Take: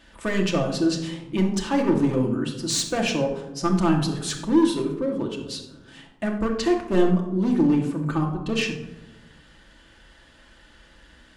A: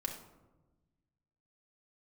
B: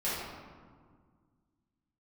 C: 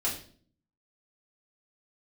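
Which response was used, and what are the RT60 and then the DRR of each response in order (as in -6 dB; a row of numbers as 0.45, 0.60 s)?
A; 1.1, 1.8, 0.50 s; 0.0, -11.0, -7.0 dB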